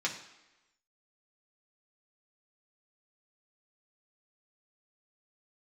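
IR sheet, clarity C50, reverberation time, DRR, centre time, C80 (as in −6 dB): 9.0 dB, 1.0 s, −2.5 dB, 20 ms, 11.5 dB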